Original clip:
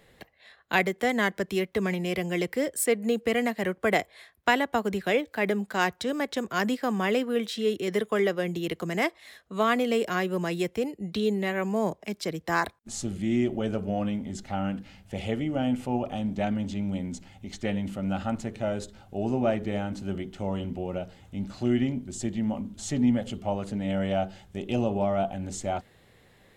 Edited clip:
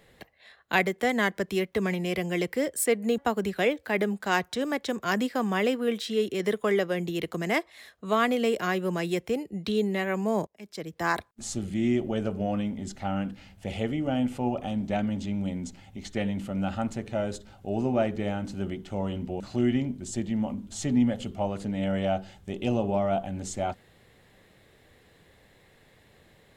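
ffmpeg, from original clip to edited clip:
-filter_complex "[0:a]asplit=4[s0][s1][s2][s3];[s0]atrim=end=3.182[s4];[s1]atrim=start=4.658:end=11.95,asetpts=PTS-STARTPTS,afade=t=out:st=7.288:d=0.004:c=hsin:silence=0.0630957[s5];[s2]atrim=start=11.95:end=20.882,asetpts=PTS-STARTPTS,afade=t=in:d=0.7:silence=0.0630957[s6];[s3]atrim=start=21.468[s7];[s5][s6]concat=n=2:v=0:a=1[s8];[s4][s8]acrossfade=d=0.004:c1=hsin:c2=hsin[s9];[s9][s7]acrossfade=d=0.004:c1=hsin:c2=hsin"

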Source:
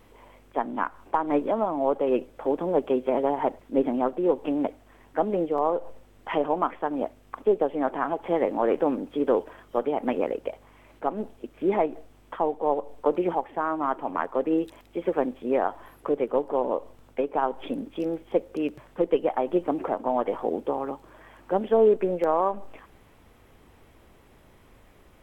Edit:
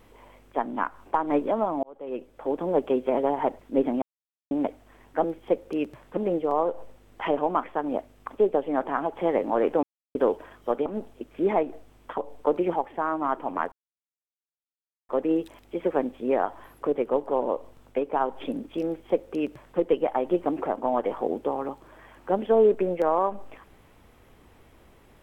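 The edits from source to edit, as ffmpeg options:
-filter_complex "[0:a]asplit=11[s0][s1][s2][s3][s4][s5][s6][s7][s8][s9][s10];[s0]atrim=end=1.83,asetpts=PTS-STARTPTS,afade=t=out:st=1.826:d=0.004:c=hsin[s11];[s1]atrim=start=1.83:end=4.02,asetpts=PTS-STARTPTS,afade=t=in:d=0.88,afade=t=out:st=2.186:d=0.004:c=hsin[s12];[s2]atrim=start=4.02:end=4.51,asetpts=PTS-STARTPTS,volume=0[s13];[s3]atrim=start=4.51:end=5.242,asetpts=PTS-STARTPTS,afade=t=in:d=0.004:c=hsin[s14];[s4]atrim=start=18.078:end=19.012[s15];[s5]atrim=start=5.238:end=8.9,asetpts=PTS-STARTPTS,afade=t=out:st=3.658:d=0.004:c=hsin[s16];[s6]atrim=start=8.9:end=9.22,asetpts=PTS-STARTPTS,volume=0[s17];[s7]atrim=start=9.22:end=9.932,asetpts=PTS-STARTPTS,afade=t=in:d=0.004:c=hsin[s18];[s8]atrim=start=11.088:end=12.412[s19];[s9]atrim=start=12.768:end=14.31,asetpts=PTS-STARTPTS,afade=t=out:st=1.538:d=0.004:c=hsin,apad=pad_dur=1.37[s20];[s10]atrim=start=14.31,asetpts=PTS-STARTPTS,afade=t=in:d=0.004:c=hsin[s21];[s11][s12][s13][s14]concat=n=4:v=0:a=1[s22];[s22][s15]acrossfade=d=0.004:c1=hsin:c2=hsin[s23];[s16][s17][s18]concat=n=3:v=0:a=1[s24];[s23][s24]acrossfade=d=0.004:c1=hsin:c2=hsin[s25];[s25][s19]acrossfade=d=0.004:c1=hsin:c2=hsin[s26];[s20][s21]concat=n=2:v=0:a=1[s27];[s26][s27]acrossfade=d=0.004:c1=hsin:c2=hsin"

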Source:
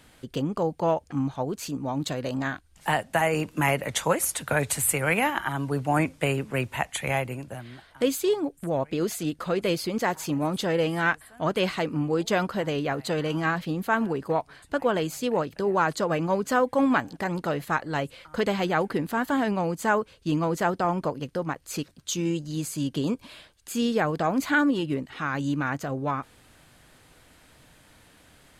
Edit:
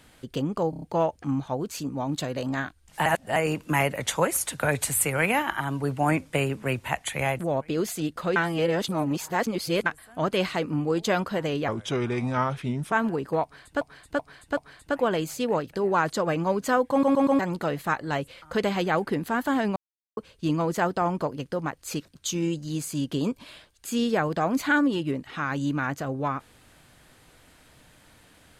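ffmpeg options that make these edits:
-filter_complex "[0:a]asplit=21[s0][s1][s2][s3][s4][s5][s6][s7][s8][s9][s10][s11][s12][s13][s14][s15][s16][s17][s18][s19][s20];[s0]atrim=end=0.732[s21];[s1]atrim=start=0.698:end=0.732[s22];[s2]atrim=start=0.698:end=0.732[s23];[s3]atrim=start=0.698:end=0.732[s24];[s4]atrim=start=0.698:end=2.942[s25];[s5]atrim=start=2.938:end=3.242,asetpts=PTS-STARTPTS,areverse[s26];[s6]atrim=start=3.238:end=7.272[s27];[s7]atrim=start=8.618:end=9.592[s28];[s8]atrim=start=9.588:end=11.092,asetpts=PTS-STARTPTS,areverse[s29];[s9]atrim=start=11.088:end=12.914[s30];[s10]atrim=start=12.91:end=13.89,asetpts=PTS-STARTPTS,asetrate=34839,aresample=44100,atrim=end_sample=54706,asetpts=PTS-STARTPTS[s31];[s11]atrim=start=13.886:end=14.782[s32];[s12]atrim=start=14.398:end=14.782[s33];[s13]atrim=start=14.398:end=14.782[s34];[s14]atrim=start=14.398:end=16.862[s35];[s15]atrim=start=16.738:end=16.862[s36];[s16]atrim=start=16.738:end=16.862[s37];[s17]atrim=start=16.738:end=16.862[s38];[s18]atrim=start=17.218:end=19.59,asetpts=PTS-STARTPTS,afade=t=out:st=2.368:d=0.004:c=hsin[s39];[s19]atrim=start=19.59:end=20,asetpts=PTS-STARTPTS,volume=0[s40];[s20]atrim=start=20,asetpts=PTS-STARTPTS,afade=t=in:d=0.004:c=hsin[s41];[s21][s22]acrossfade=d=0.004:c1=hsin:c2=hsin[s42];[s42][s23]acrossfade=d=0.004:c1=hsin:c2=hsin[s43];[s43][s24]acrossfade=d=0.004:c1=hsin:c2=hsin[s44];[s44][s25]acrossfade=d=0.004:c1=hsin:c2=hsin[s45];[s45][s26]acrossfade=d=0.004:c1=hsin:c2=hsin[s46];[s46][s27]acrossfade=d=0.004:c1=hsin:c2=hsin[s47];[s47][s28]acrossfade=d=0.004:c1=hsin:c2=hsin[s48];[s48][s29]acrossfade=d=0.004:c1=hsin:c2=hsin[s49];[s49][s30]acrossfade=d=0.004:c1=hsin:c2=hsin[s50];[s50][s31]acrossfade=d=0.004:c1=hsin:c2=hsin[s51];[s51][s32]acrossfade=d=0.004:c1=hsin:c2=hsin[s52];[s52][s33]acrossfade=d=0.004:c1=hsin:c2=hsin[s53];[s53][s34]acrossfade=d=0.004:c1=hsin:c2=hsin[s54];[s54][s35]acrossfade=d=0.004:c1=hsin:c2=hsin[s55];[s55][s36]acrossfade=d=0.004:c1=hsin:c2=hsin[s56];[s56][s37]acrossfade=d=0.004:c1=hsin:c2=hsin[s57];[s57][s38]acrossfade=d=0.004:c1=hsin:c2=hsin[s58];[s39][s40][s41]concat=n=3:v=0:a=1[s59];[s58][s59]acrossfade=d=0.004:c1=hsin:c2=hsin"

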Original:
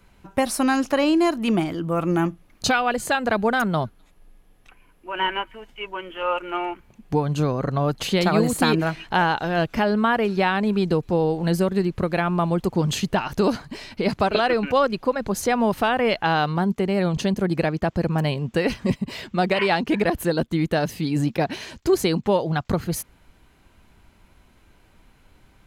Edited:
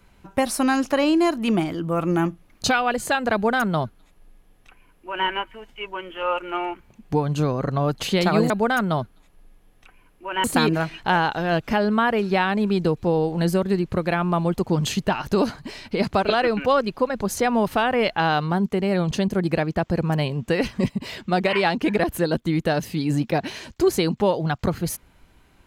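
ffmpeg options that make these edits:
-filter_complex "[0:a]asplit=3[s0][s1][s2];[s0]atrim=end=8.502[s3];[s1]atrim=start=3.328:end=5.272[s4];[s2]atrim=start=8.498[s5];[s3][s4]acrossfade=d=0.004:c1=hsin:c2=hsin[s6];[s6][s5]acrossfade=d=0.004:c1=hsin:c2=hsin"

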